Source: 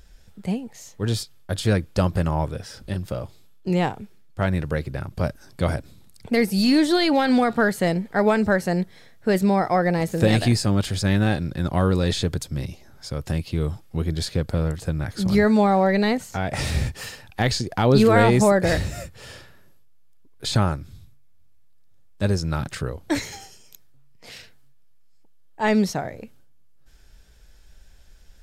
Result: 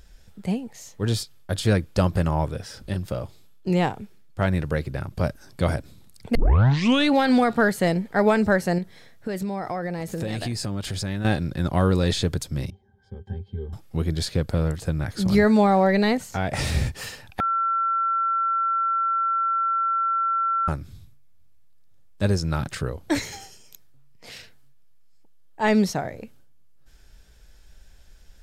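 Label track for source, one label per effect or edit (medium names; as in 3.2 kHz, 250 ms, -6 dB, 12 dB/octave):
6.350000	6.350000	tape start 0.79 s
8.780000	11.250000	compression, threshold -25 dBFS
12.700000	13.730000	pitch-class resonator G, decay 0.11 s
17.400000	20.680000	bleep 1.35 kHz -20 dBFS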